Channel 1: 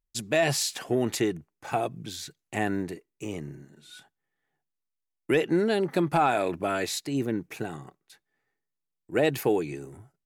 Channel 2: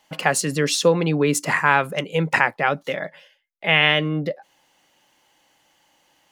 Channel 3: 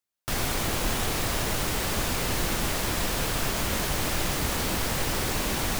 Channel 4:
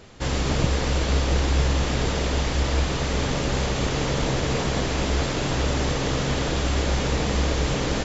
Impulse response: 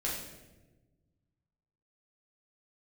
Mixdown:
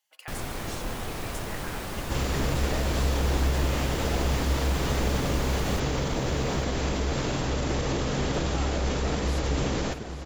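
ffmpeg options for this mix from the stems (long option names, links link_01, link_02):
-filter_complex "[0:a]adelay=2400,volume=-5.5dB,asplit=2[link_01][link_02];[link_02]volume=-17dB[link_03];[1:a]highpass=frequency=370:width=0.5412,highpass=frequency=370:width=1.3066,aderivative,volume=-6.5dB[link_04];[2:a]volume=-4.5dB,asplit=2[link_05][link_06];[link_06]volume=-13.5dB[link_07];[3:a]alimiter=limit=-17.5dB:level=0:latency=1:release=35,highshelf=frequency=5300:gain=8,adelay=1900,volume=-1dB,asplit=2[link_08][link_09];[link_09]volume=-11dB[link_10];[link_01][link_04]amix=inputs=2:normalize=0,acompressor=threshold=-35dB:ratio=6,volume=0dB[link_11];[link_03][link_07][link_10]amix=inputs=3:normalize=0,aecho=0:1:837|1674|2511|3348|4185:1|0.37|0.137|0.0507|0.0187[link_12];[link_05][link_08][link_11][link_12]amix=inputs=4:normalize=0,highshelf=frequency=2200:gain=-7.5"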